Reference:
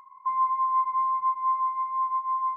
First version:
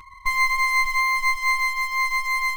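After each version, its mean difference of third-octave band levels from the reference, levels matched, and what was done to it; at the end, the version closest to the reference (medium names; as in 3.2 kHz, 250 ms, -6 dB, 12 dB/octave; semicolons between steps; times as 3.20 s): 10.0 dB: comb filter that takes the minimum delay 6.3 ms; in parallel at -12 dB: word length cut 6-bit, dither none; on the sum: trim +7.5 dB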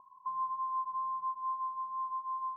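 1.0 dB: steep low-pass 970 Hz 48 dB/octave; in parallel at +0.5 dB: compression, threshold -36 dBFS, peak gain reduction 9 dB; on the sum: trim -7.5 dB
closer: second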